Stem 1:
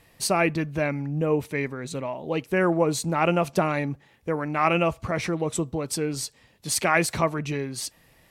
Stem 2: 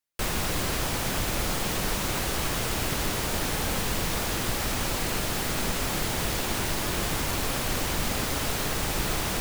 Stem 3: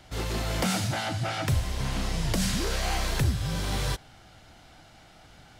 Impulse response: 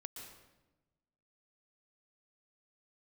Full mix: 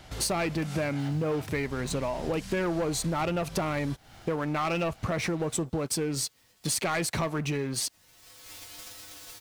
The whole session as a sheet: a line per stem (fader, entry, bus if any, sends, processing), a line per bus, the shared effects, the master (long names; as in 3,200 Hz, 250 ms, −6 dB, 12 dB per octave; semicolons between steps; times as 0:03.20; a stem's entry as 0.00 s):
−5.5 dB, 0.00 s, no send, leveller curve on the samples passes 3
−9.5 dB, 0.80 s, no send, spectral envelope flattened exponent 0.3; parametric band 4,800 Hz +5 dB 1.4 octaves; tuned comb filter 100 Hz, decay 0.25 s, harmonics odd, mix 90%; automatic ducking −20 dB, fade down 2.00 s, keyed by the first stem
+2.5 dB, 0.00 s, no send, downward compressor 5 to 1, threshold −38 dBFS, peak gain reduction 15.5 dB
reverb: not used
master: downward compressor, threshold −27 dBFS, peak gain reduction 10.5 dB